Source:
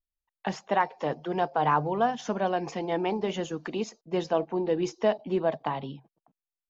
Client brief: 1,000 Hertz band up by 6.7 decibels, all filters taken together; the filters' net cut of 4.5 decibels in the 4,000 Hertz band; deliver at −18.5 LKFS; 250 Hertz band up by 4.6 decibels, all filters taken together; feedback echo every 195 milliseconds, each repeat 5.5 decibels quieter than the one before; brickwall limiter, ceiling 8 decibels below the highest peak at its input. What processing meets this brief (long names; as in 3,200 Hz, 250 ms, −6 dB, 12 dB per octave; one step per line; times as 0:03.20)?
parametric band 250 Hz +6.5 dB
parametric band 1,000 Hz +8.5 dB
parametric band 4,000 Hz −8 dB
brickwall limiter −14 dBFS
repeating echo 195 ms, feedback 53%, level −5.5 dB
level +7 dB